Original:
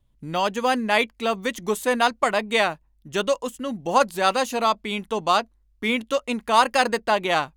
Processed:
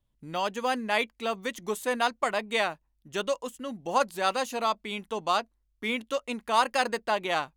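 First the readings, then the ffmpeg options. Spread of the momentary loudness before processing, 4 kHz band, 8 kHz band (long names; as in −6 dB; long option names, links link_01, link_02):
7 LU, −6.0 dB, −6.0 dB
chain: -af "lowshelf=frequency=180:gain=-5.5,volume=-6dB"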